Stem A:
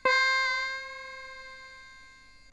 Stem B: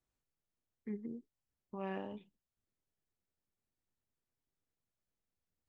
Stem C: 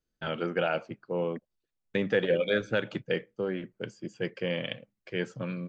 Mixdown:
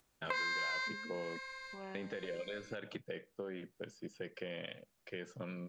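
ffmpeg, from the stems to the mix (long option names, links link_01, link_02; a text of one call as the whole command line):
ffmpeg -i stem1.wav -i stem2.wav -i stem3.wav -filter_complex "[0:a]lowshelf=frequency=440:gain=-11,adelay=250,volume=-3dB[link_01];[1:a]acompressor=mode=upward:threshold=-52dB:ratio=2.5,volume=-5.5dB,asplit=2[link_02][link_03];[2:a]alimiter=limit=-21.5dB:level=0:latency=1:release=63,volume=-4dB[link_04];[link_03]apad=whole_len=122212[link_05];[link_01][link_05]sidechaincompress=threshold=-53dB:ratio=3:attack=36:release=346[link_06];[link_02][link_04]amix=inputs=2:normalize=0,lowshelf=frequency=170:gain=-7,acompressor=threshold=-39dB:ratio=6,volume=0dB[link_07];[link_06][link_07]amix=inputs=2:normalize=0,acompressor=threshold=-34dB:ratio=6" out.wav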